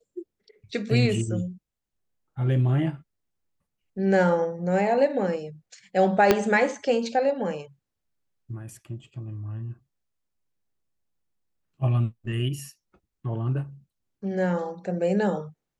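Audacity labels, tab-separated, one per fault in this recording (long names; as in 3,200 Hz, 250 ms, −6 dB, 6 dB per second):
6.310000	6.310000	click −4 dBFS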